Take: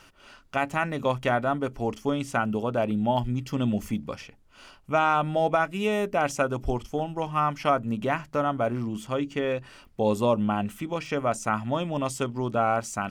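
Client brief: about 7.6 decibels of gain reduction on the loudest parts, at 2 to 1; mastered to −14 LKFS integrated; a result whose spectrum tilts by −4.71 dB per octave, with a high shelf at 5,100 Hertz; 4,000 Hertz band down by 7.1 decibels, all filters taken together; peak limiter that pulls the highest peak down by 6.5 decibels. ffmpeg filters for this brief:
ffmpeg -i in.wav -af "equalizer=frequency=4000:width_type=o:gain=-7,highshelf=frequency=5100:gain=-8,acompressor=threshold=-33dB:ratio=2,volume=22dB,alimiter=limit=-3dB:level=0:latency=1" out.wav

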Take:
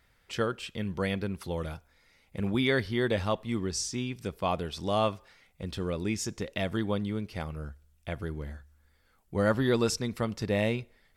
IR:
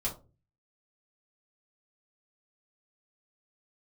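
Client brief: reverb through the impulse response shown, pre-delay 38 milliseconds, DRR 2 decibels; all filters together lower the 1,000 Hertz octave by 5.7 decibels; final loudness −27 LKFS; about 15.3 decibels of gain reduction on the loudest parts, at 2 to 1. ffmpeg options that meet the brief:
-filter_complex "[0:a]equalizer=frequency=1000:width_type=o:gain=-8,acompressor=threshold=-52dB:ratio=2,asplit=2[link_01][link_02];[1:a]atrim=start_sample=2205,adelay=38[link_03];[link_02][link_03]afir=irnorm=-1:irlink=0,volume=-5.5dB[link_04];[link_01][link_04]amix=inputs=2:normalize=0,volume=16dB"

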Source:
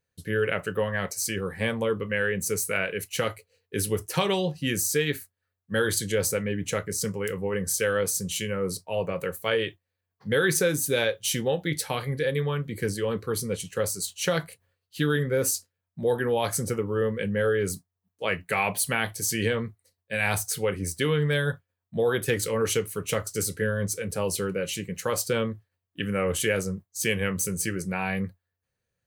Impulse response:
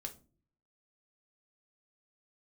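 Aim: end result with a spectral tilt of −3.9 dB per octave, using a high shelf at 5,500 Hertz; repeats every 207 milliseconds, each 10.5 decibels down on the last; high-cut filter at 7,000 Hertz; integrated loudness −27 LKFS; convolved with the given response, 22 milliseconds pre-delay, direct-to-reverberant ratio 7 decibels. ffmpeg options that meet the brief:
-filter_complex "[0:a]lowpass=7000,highshelf=frequency=5500:gain=4.5,aecho=1:1:207|414|621:0.299|0.0896|0.0269,asplit=2[link_01][link_02];[1:a]atrim=start_sample=2205,adelay=22[link_03];[link_02][link_03]afir=irnorm=-1:irlink=0,volume=-4dB[link_04];[link_01][link_04]amix=inputs=2:normalize=0,volume=-0.5dB"

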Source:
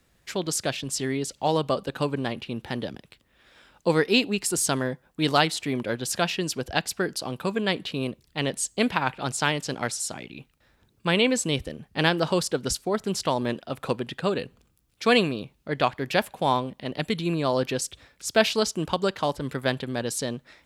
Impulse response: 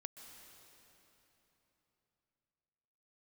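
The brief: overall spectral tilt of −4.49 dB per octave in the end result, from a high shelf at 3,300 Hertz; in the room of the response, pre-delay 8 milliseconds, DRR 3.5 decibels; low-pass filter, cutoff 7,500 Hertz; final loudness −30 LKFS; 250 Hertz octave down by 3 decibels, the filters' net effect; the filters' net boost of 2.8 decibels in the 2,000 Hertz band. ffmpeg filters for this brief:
-filter_complex "[0:a]lowpass=7500,equalizer=frequency=250:width_type=o:gain=-4,equalizer=frequency=2000:width_type=o:gain=6,highshelf=frequency=3300:gain=-7,asplit=2[link_01][link_02];[1:a]atrim=start_sample=2205,adelay=8[link_03];[link_02][link_03]afir=irnorm=-1:irlink=0,volume=1dB[link_04];[link_01][link_04]amix=inputs=2:normalize=0,volume=-4.5dB"

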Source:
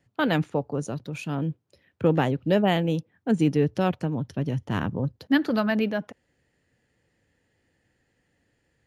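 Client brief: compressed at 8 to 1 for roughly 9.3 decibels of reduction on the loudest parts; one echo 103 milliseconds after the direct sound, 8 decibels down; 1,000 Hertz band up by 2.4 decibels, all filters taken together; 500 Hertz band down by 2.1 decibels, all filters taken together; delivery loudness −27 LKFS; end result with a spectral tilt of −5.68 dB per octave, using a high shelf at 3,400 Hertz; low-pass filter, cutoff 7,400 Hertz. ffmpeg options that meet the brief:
ffmpeg -i in.wav -af "lowpass=7400,equalizer=frequency=500:width_type=o:gain=-4,equalizer=frequency=1000:width_type=o:gain=4.5,highshelf=frequency=3400:gain=5,acompressor=threshold=-26dB:ratio=8,aecho=1:1:103:0.398,volume=5dB" out.wav

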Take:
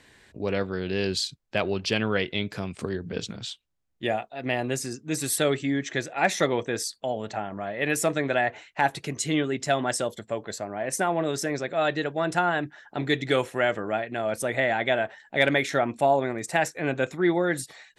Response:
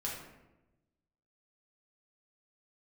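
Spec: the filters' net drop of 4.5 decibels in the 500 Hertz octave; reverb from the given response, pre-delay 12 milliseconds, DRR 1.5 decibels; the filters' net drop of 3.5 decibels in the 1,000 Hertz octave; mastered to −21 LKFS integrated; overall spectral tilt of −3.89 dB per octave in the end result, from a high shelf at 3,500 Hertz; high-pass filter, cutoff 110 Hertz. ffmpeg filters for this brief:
-filter_complex "[0:a]highpass=110,equalizer=frequency=500:width_type=o:gain=-5,equalizer=frequency=1000:width_type=o:gain=-3.5,highshelf=frequency=3500:gain=7.5,asplit=2[link_01][link_02];[1:a]atrim=start_sample=2205,adelay=12[link_03];[link_02][link_03]afir=irnorm=-1:irlink=0,volume=-3.5dB[link_04];[link_01][link_04]amix=inputs=2:normalize=0,volume=4dB"

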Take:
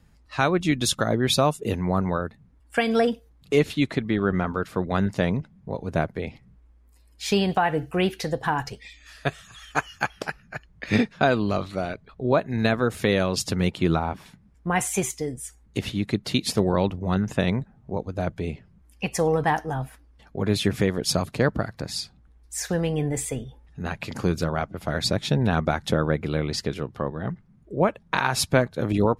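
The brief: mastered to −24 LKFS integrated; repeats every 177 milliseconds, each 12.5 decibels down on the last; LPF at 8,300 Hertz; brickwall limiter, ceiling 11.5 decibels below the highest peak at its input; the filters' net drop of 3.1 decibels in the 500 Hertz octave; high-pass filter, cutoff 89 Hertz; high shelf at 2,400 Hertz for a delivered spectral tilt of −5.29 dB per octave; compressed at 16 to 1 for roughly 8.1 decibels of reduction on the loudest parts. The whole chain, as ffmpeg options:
ffmpeg -i in.wav -af "highpass=89,lowpass=8300,equalizer=frequency=500:width_type=o:gain=-3.5,highshelf=frequency=2400:gain=-7.5,acompressor=threshold=-25dB:ratio=16,alimiter=limit=-23dB:level=0:latency=1,aecho=1:1:177|354|531:0.237|0.0569|0.0137,volume=11dB" out.wav

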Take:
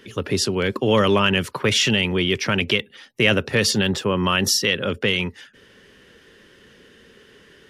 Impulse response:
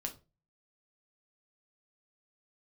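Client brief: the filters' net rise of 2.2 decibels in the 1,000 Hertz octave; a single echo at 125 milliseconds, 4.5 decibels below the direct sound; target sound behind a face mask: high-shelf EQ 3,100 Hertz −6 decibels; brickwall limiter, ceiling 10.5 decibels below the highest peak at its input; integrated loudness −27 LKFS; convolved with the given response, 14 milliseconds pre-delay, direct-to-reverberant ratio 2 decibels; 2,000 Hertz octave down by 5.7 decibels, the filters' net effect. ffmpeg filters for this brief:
-filter_complex "[0:a]equalizer=frequency=1000:width_type=o:gain=5.5,equalizer=frequency=2000:width_type=o:gain=-6.5,alimiter=limit=-15dB:level=0:latency=1,aecho=1:1:125:0.596,asplit=2[link_01][link_02];[1:a]atrim=start_sample=2205,adelay=14[link_03];[link_02][link_03]afir=irnorm=-1:irlink=0,volume=-1.5dB[link_04];[link_01][link_04]amix=inputs=2:normalize=0,highshelf=frequency=3100:gain=-6,volume=-4dB"

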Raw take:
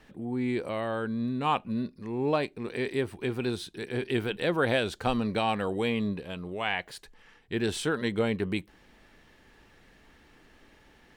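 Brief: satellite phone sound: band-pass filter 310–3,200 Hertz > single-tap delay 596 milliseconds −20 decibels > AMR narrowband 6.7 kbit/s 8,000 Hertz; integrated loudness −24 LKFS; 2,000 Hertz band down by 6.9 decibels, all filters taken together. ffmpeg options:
ffmpeg -i in.wav -af "highpass=310,lowpass=3200,equalizer=frequency=2000:width_type=o:gain=-8.5,aecho=1:1:596:0.1,volume=10.5dB" -ar 8000 -c:a libopencore_amrnb -b:a 6700 out.amr

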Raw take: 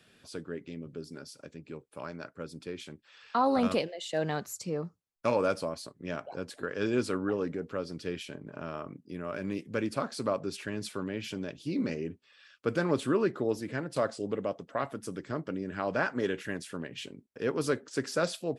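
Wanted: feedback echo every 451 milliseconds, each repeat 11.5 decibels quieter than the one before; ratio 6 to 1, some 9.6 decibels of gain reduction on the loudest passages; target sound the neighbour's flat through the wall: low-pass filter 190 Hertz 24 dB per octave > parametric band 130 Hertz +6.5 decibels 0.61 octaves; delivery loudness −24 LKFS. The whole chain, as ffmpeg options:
ffmpeg -i in.wav -af "acompressor=threshold=-33dB:ratio=6,lowpass=frequency=190:width=0.5412,lowpass=frequency=190:width=1.3066,equalizer=frequency=130:width_type=o:width=0.61:gain=6.5,aecho=1:1:451|902|1353:0.266|0.0718|0.0194,volume=22.5dB" out.wav

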